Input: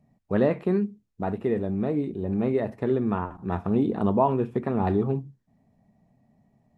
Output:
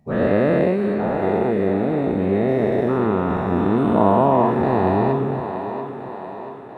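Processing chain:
every bin's largest magnitude spread in time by 480 ms
feedback echo with a high-pass in the loop 686 ms, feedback 59%, high-pass 250 Hz, level −8.5 dB
feedback echo with a swinging delay time 331 ms, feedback 75%, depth 71 cents, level −23.5 dB
level −1 dB

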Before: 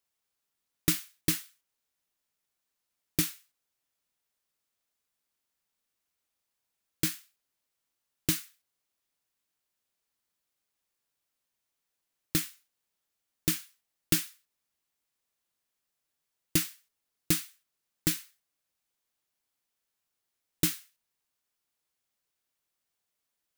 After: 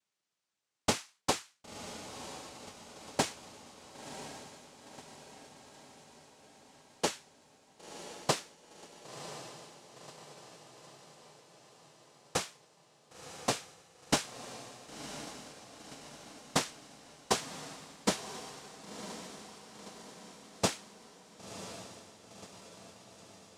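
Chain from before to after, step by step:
cochlear-implant simulation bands 2
feedback delay with all-pass diffusion 1,029 ms, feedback 58%, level −10 dB

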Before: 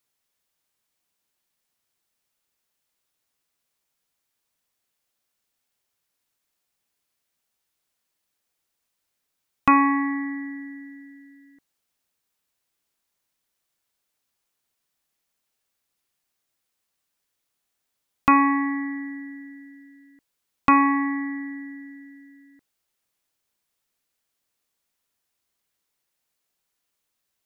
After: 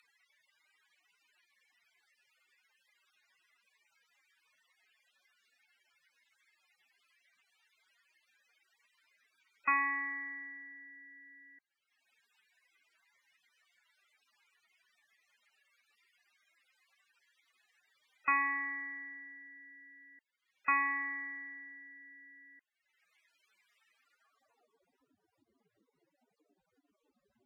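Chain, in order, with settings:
spectral peaks only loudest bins 64
band-pass filter sweep 2,000 Hz → 280 Hz, 0:23.92–0:25.12
upward compression, threshold −45 dBFS
level −4.5 dB

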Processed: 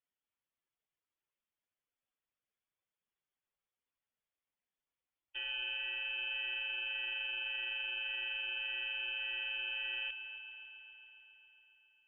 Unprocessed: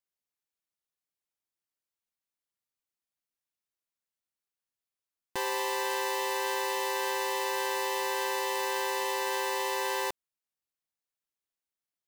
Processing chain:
expanding power law on the bin magnitudes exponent 1.9
brickwall limiter −33 dBFS, peak gain reduction 10 dB
voice inversion scrambler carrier 3,500 Hz
on a send: echo machine with several playback heads 137 ms, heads first and second, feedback 71%, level −13.5 dB

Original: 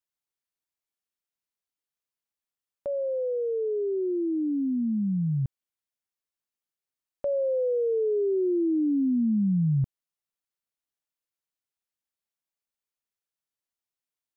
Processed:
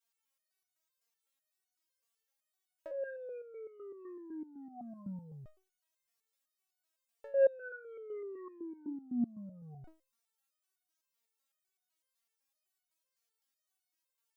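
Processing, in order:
bass and treble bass −14 dB, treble +2 dB
in parallel at +1.5 dB: compressor whose output falls as the input rises −35 dBFS, ratio −0.5
on the sum: soft clipping −24.5 dBFS, distortion −20 dB
step-sequenced resonator 7.9 Hz 230–730 Hz
level +8 dB

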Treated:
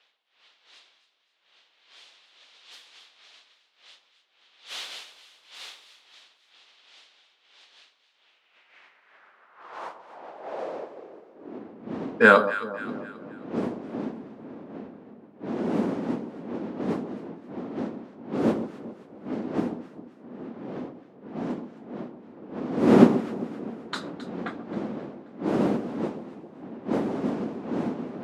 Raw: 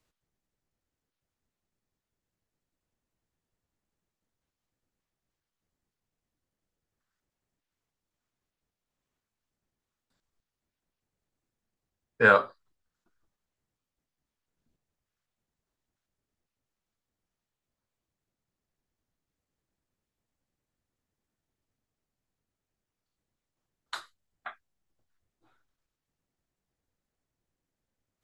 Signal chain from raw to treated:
wind on the microphone 440 Hz −35 dBFS
low-pass that shuts in the quiet parts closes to 2,400 Hz, open at −27.5 dBFS
high-shelf EQ 5,600 Hz +9.5 dB
high-pass filter sweep 3,500 Hz → 230 Hz, 0:08.16–0:11.84
on a send: delay that swaps between a low-pass and a high-pass 133 ms, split 1,100 Hz, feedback 66%, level −10.5 dB
on the sum: level +3 dB

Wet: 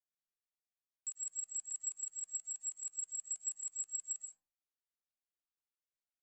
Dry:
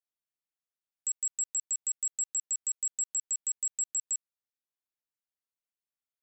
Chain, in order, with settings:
low-pass filter 9,600 Hz 24 dB per octave
comb and all-pass reverb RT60 0.46 s, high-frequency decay 0.4×, pre-delay 85 ms, DRR 2.5 dB
flanger whose copies keep moving one way rising 1.1 Hz
level −6.5 dB

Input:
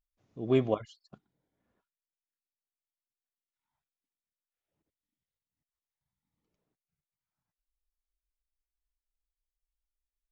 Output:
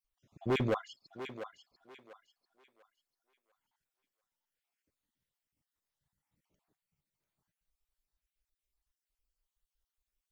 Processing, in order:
time-frequency cells dropped at random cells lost 39%
gain into a clipping stage and back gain 30 dB
feedback echo with a high-pass in the loop 694 ms, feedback 30%, high-pass 400 Hz, level −9.5 dB
level +4.5 dB

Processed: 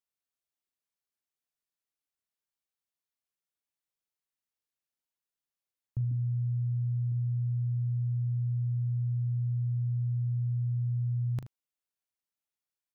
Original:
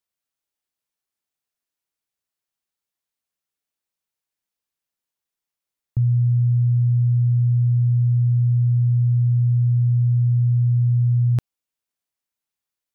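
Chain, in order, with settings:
0:06.11–0:07.12: parametric band 250 Hz +11.5 dB 0.38 octaves
brickwall limiter −17.5 dBFS, peak gain reduction 5 dB
ambience of single reflections 39 ms −11 dB, 77 ms −14.5 dB
level −8 dB

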